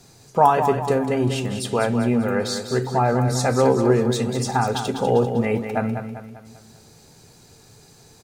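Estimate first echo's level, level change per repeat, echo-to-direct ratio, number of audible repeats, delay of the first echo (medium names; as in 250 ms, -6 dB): -8.0 dB, -6.5 dB, -7.0 dB, 5, 197 ms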